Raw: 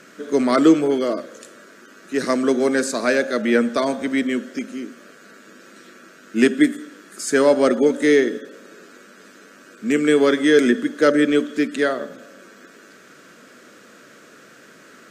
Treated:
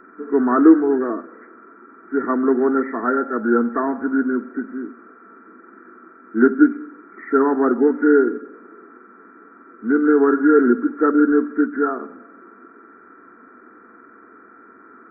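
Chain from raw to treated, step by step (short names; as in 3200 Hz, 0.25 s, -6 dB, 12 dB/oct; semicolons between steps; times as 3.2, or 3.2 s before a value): nonlinear frequency compression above 1300 Hz 4:1; fixed phaser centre 570 Hz, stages 6; gain +3 dB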